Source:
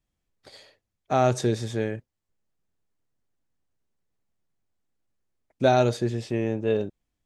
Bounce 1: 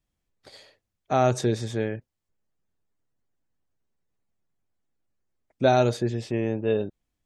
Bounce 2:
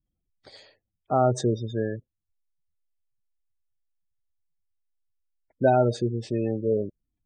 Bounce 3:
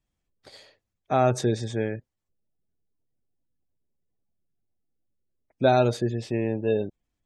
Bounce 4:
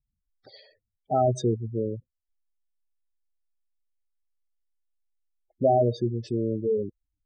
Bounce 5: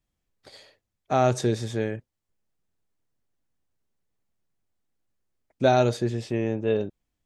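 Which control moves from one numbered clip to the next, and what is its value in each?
spectral gate, under each frame's peak: -45, -20, -35, -10, -60 dB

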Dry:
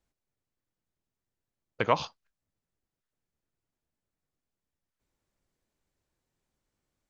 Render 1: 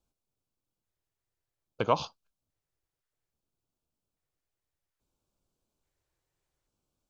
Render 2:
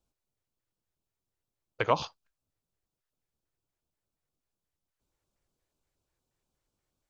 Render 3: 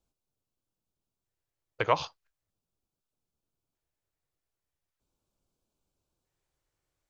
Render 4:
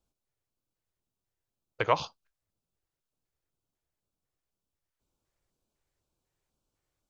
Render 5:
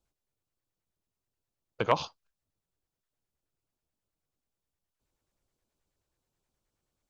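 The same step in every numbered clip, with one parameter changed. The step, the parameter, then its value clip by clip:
LFO notch, rate: 0.6, 4.2, 0.4, 2, 9.4 Hz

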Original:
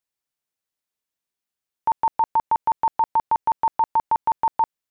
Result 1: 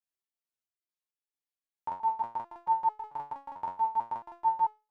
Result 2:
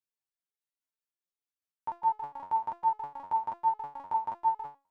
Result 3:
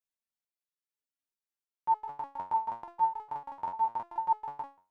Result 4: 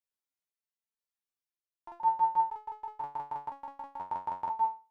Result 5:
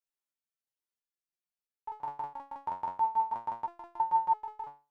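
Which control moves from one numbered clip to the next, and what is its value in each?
stepped resonator, rate: 4.5, 9.9, 6.7, 2, 3 Hz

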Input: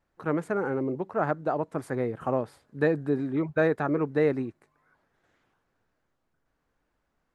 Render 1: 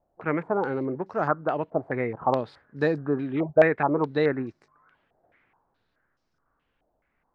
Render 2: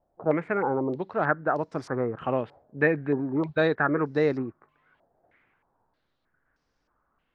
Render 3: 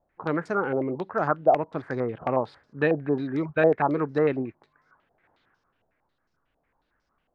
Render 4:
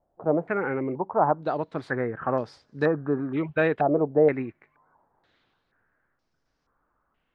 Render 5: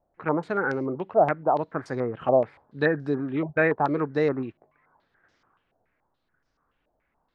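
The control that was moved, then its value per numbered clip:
stepped low-pass, rate: 4.7, 3.2, 11, 2.1, 7 Hz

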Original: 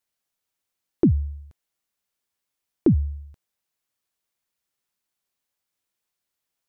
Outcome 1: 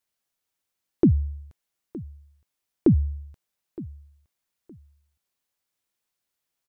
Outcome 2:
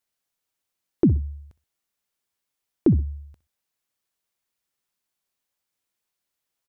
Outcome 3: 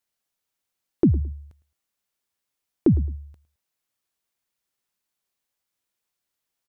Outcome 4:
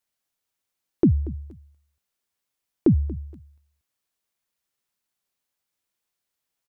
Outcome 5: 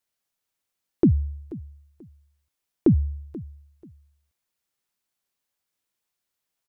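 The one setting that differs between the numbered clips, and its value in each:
feedback echo, time: 916, 63, 108, 234, 485 ms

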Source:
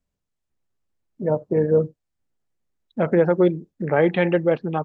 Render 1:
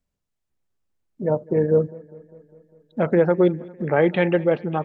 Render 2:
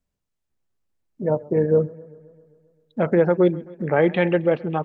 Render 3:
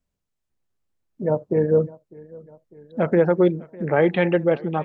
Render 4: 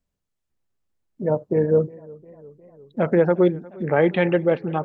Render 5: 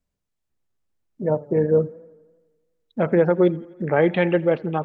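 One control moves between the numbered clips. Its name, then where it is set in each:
warbling echo, time: 201, 132, 602, 354, 84 ms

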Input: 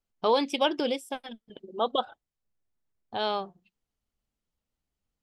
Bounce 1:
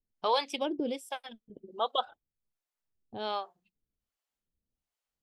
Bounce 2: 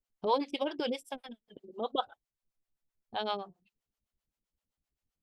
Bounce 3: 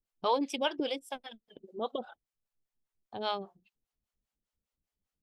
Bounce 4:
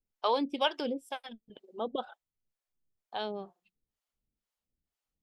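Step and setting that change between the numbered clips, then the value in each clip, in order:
harmonic tremolo, rate: 1.3, 7.7, 5, 2.1 Hz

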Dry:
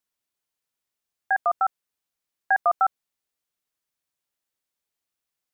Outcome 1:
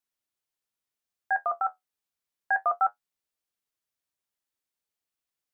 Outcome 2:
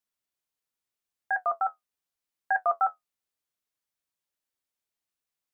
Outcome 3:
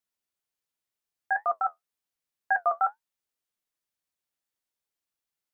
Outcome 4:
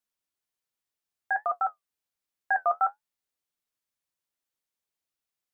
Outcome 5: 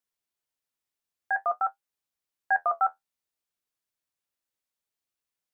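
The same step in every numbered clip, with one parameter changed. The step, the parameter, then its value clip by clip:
flange, rate: 0.28, 0.82, 2, 1.3, 0.53 Hz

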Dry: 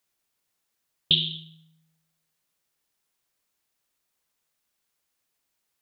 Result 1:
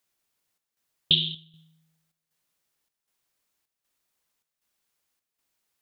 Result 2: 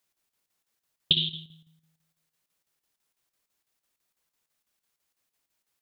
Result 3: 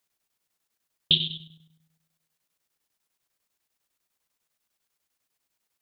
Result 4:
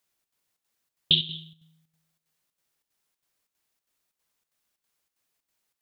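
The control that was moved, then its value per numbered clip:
chopper, rate: 1.3, 6, 10, 3.1 Hz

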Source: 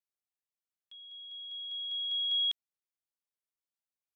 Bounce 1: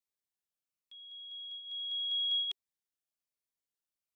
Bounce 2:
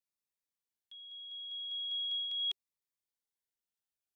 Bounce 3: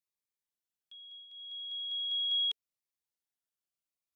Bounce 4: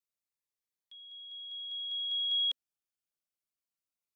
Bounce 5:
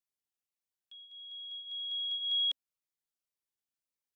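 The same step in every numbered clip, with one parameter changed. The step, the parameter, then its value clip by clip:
cascading phaser, rate: 1.2, 0.41, 0.74, 0.24, 1.8 Hz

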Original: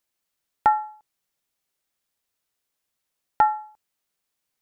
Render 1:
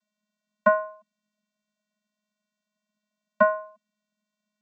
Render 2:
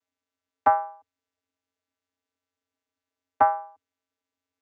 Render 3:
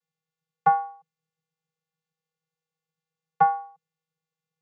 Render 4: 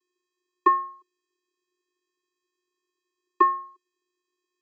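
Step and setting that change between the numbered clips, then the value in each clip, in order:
vocoder, frequency: 210, 90, 160, 360 Hz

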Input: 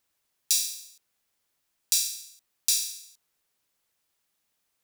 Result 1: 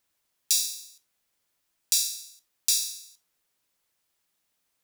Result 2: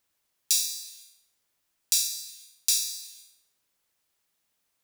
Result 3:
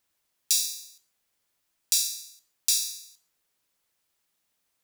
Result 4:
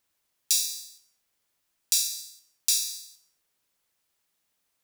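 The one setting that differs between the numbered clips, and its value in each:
non-linear reverb, gate: 0.11, 0.52, 0.18, 0.3 s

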